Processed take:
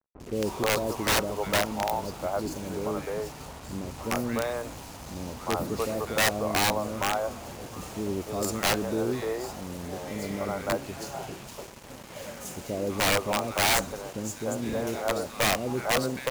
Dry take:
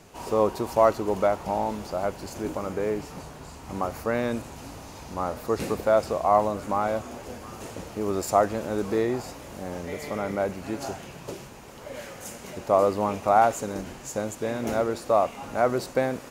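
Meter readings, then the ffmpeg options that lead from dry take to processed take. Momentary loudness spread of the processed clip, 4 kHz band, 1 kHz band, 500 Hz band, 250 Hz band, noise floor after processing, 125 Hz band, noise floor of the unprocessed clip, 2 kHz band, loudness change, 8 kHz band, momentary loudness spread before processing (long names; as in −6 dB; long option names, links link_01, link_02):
14 LU, +11.5 dB, −5.0 dB, −5.0 dB, −1.0 dB, −44 dBFS, +0.5 dB, −44 dBFS, +6.0 dB, −2.5 dB, +7.0 dB, 17 LU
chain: -filter_complex "[0:a]acrossover=split=430|1800[link_01][link_02][link_03];[link_03]adelay=200[link_04];[link_02]adelay=300[link_05];[link_01][link_05][link_04]amix=inputs=3:normalize=0,acrusher=bits=6:mix=0:aa=0.5,aeval=exprs='(mod(7.5*val(0)+1,2)-1)/7.5':channel_layout=same"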